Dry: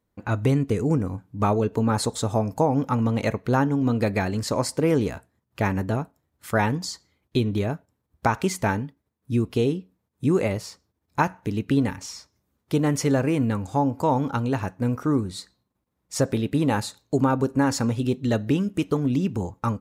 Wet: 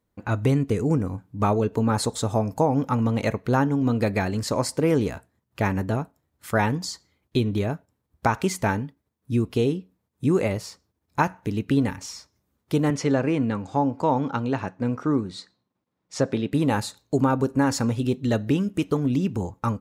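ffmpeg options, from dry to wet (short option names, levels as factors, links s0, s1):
-filter_complex "[0:a]asettb=1/sr,asplit=3[s0][s1][s2];[s0]atrim=end=12.904[s3];[s1]atrim=start=12.9:end=16.53,asetpts=PTS-STARTPTS,afade=t=in:d=0.004:c=qsin,afade=t=out:st=3.626:d=0.004:c=qsin,highpass=130,lowpass=5400[s4];[s2]atrim=start=16.526[s5];[s3][s4]acrossfade=d=0.004:c1=hsin:c2=qsin[s6];[s6][s5]acrossfade=d=0.004:c1=qsin:c2=hsin"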